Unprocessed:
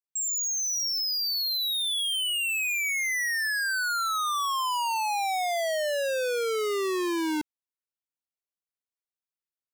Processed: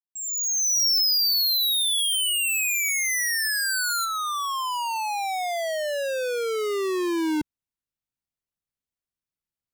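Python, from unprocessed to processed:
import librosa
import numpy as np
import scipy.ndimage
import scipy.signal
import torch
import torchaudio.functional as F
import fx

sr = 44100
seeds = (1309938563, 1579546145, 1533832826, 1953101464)

y = fx.fade_in_head(x, sr, length_s=0.9)
y = fx.bass_treble(y, sr, bass_db=13, treble_db=fx.steps((0.0, 10.0), (4.04, -1.0)))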